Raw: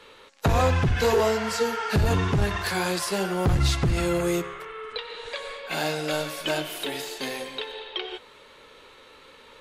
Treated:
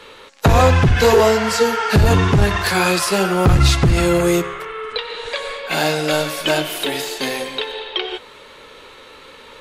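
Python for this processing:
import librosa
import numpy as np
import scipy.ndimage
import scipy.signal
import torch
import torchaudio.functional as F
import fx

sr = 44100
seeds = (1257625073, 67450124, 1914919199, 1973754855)

y = fx.small_body(x, sr, hz=(1300.0, 2500.0), ring_ms=45, db=fx.line((2.74, 12.0), (3.72, 9.0)), at=(2.74, 3.72), fade=0.02)
y = y * librosa.db_to_amplitude(9.0)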